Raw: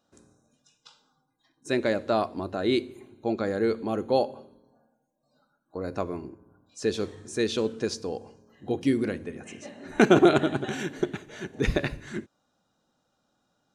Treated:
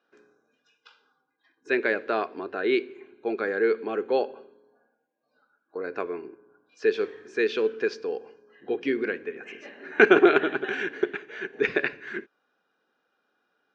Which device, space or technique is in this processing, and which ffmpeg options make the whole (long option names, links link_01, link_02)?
phone earpiece: -af "highpass=370,equalizer=frequency=420:width_type=q:width=4:gain=9,equalizer=frequency=600:width_type=q:width=4:gain=-6,equalizer=frequency=870:width_type=q:width=4:gain=-3,equalizer=frequency=1600:width_type=q:width=4:gain=10,equalizer=frequency=2400:width_type=q:width=4:gain=7,equalizer=frequency=3900:width_type=q:width=4:gain=-6,lowpass=frequency=4400:width=0.5412,lowpass=frequency=4400:width=1.3066"